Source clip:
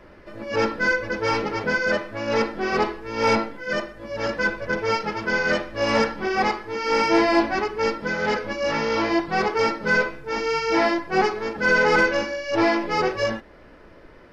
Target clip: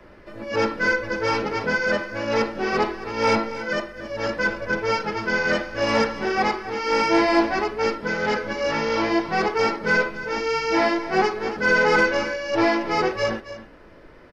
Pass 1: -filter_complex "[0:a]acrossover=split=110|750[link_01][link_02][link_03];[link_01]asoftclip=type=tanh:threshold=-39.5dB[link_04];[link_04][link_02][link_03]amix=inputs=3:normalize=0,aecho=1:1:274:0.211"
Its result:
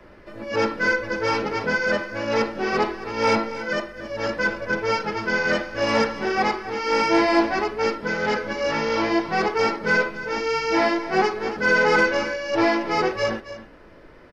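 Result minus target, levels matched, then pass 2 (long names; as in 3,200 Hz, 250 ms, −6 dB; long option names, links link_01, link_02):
soft clipping: distortion +12 dB
-filter_complex "[0:a]acrossover=split=110|750[link_01][link_02][link_03];[link_01]asoftclip=type=tanh:threshold=-31dB[link_04];[link_04][link_02][link_03]amix=inputs=3:normalize=0,aecho=1:1:274:0.211"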